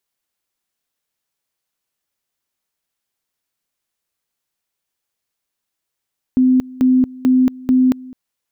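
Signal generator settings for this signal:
tone at two levels in turn 256 Hz −9 dBFS, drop 22 dB, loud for 0.23 s, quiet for 0.21 s, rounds 4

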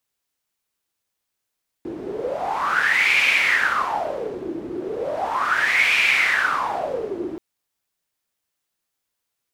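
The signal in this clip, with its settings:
wind from filtered noise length 5.53 s, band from 330 Hz, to 2,400 Hz, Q 8.4, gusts 2, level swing 12.5 dB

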